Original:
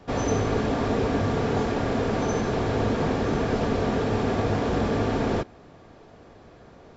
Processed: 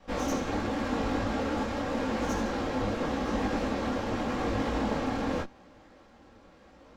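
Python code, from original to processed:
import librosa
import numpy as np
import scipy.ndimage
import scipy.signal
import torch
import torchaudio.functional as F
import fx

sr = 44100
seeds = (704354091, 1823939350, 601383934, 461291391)

y = fx.lower_of_two(x, sr, delay_ms=3.7)
y = fx.detune_double(y, sr, cents=30)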